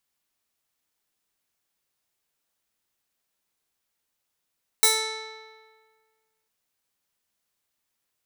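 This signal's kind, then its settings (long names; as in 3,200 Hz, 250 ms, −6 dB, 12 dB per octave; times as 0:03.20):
Karplus-Strong string A4, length 1.65 s, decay 1.67 s, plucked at 0.27, bright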